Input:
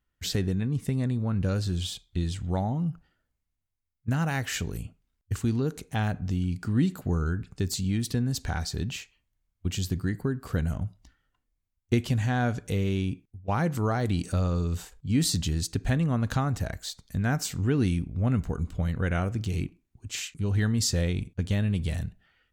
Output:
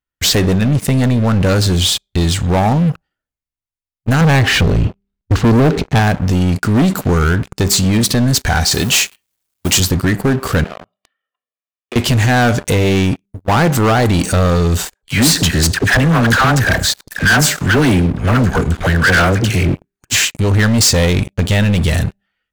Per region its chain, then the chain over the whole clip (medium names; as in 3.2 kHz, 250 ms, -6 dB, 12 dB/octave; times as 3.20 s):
4.21–5.99 s: low-pass 4.9 kHz 24 dB/octave + bass shelf 460 Hz +11.5 dB
8.71–9.80 s: companding laws mixed up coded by mu + high-pass 190 Hz 6 dB/octave + treble shelf 3.7 kHz +9.5 dB
10.64–11.96 s: Chebyshev band-pass 260–3300 Hz, order 3 + comb 1.7 ms, depth 90% + compression 8:1, threshold -44 dBFS
14.94–20.25 s: peaking EQ 1.6 kHz +11.5 dB 0.5 oct + phase dispersion lows, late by 86 ms, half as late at 730 Hz + delay 103 ms -24 dB
whole clip: bass shelf 260 Hz -7 dB; de-hum 198.2 Hz, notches 4; waveshaping leveller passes 5; trim +4.5 dB